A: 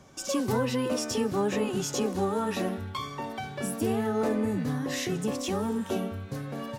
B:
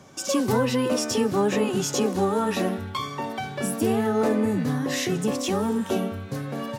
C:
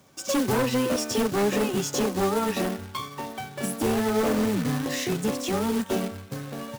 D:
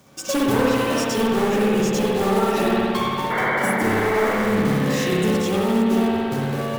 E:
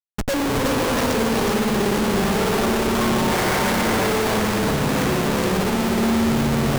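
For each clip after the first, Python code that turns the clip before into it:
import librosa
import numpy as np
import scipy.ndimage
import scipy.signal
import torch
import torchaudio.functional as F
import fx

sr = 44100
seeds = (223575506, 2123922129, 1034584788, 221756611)

y1 = scipy.signal.sosfilt(scipy.signal.butter(2, 96.0, 'highpass', fs=sr, output='sos'), x)
y1 = y1 * 10.0 ** (5.0 / 20.0)
y2 = 10.0 ** (-17.5 / 20.0) * (np.abs((y1 / 10.0 ** (-17.5 / 20.0) + 3.0) % 4.0 - 2.0) - 1.0)
y2 = fx.quant_companded(y2, sr, bits=4)
y2 = fx.upward_expand(y2, sr, threshold_db=-38.0, expansion=1.5)
y3 = fx.spec_paint(y2, sr, seeds[0], shape='noise', start_s=3.3, length_s=1.06, low_hz=290.0, high_hz=2300.0, level_db=-30.0)
y3 = fx.rev_spring(y3, sr, rt60_s=2.1, pass_ms=(57,), chirp_ms=45, drr_db=-5.0)
y3 = fx.rider(y3, sr, range_db=4, speed_s=0.5)
y4 = fx.schmitt(y3, sr, flips_db=-25.0)
y4 = y4 + 10.0 ** (-4.0 / 20.0) * np.pad(y4, (int(369 * sr / 1000.0), 0))[:len(y4)]
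y4 = y4 * 10.0 ** (-1.0 / 20.0)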